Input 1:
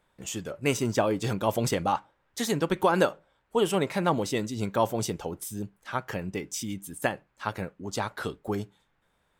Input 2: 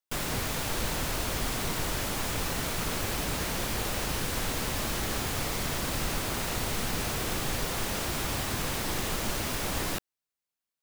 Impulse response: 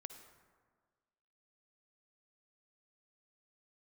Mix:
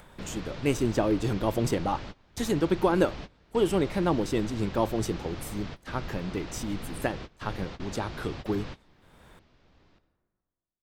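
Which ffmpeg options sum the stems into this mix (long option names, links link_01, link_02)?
-filter_complex "[0:a]adynamicequalizer=threshold=0.00631:dfrequency=330:dqfactor=3.8:tfrequency=330:tqfactor=3.8:attack=5:release=100:ratio=0.375:range=3.5:mode=boostabove:tftype=bell,acompressor=mode=upward:threshold=-34dB:ratio=2.5,volume=-5dB,asplit=2[link_01][link_02];[1:a]lowpass=frequency=4800:width=0.5412,lowpass=frequency=4800:width=1.3066,volume=-11dB,asplit=2[link_03][link_04];[link_04]volume=-20dB[link_05];[link_02]apad=whole_len=477581[link_06];[link_03][link_06]sidechaingate=range=-33dB:threshold=-48dB:ratio=16:detection=peak[link_07];[2:a]atrim=start_sample=2205[link_08];[link_05][link_08]afir=irnorm=-1:irlink=0[link_09];[link_01][link_07][link_09]amix=inputs=3:normalize=0,lowshelf=frequency=460:gain=6"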